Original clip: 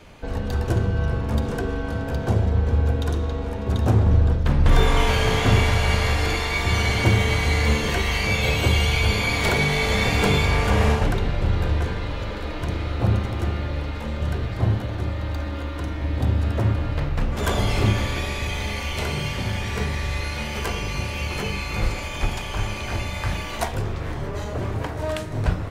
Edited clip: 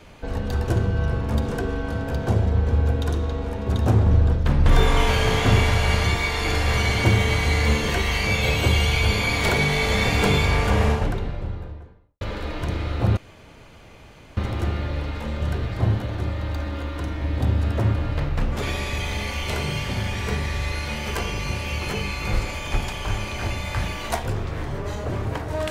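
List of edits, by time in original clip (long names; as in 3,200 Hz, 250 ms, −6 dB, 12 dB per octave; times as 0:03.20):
0:06.04–0:06.77: reverse
0:10.53–0:12.21: fade out and dull
0:13.17: splice in room tone 1.20 s
0:17.42–0:18.11: remove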